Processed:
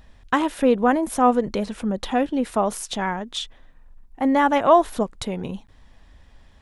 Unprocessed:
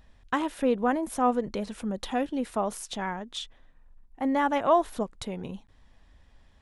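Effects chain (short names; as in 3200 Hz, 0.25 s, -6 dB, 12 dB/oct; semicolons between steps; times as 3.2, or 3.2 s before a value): 1.67–2.46 high shelf 4800 Hz -5.5 dB; gain +7 dB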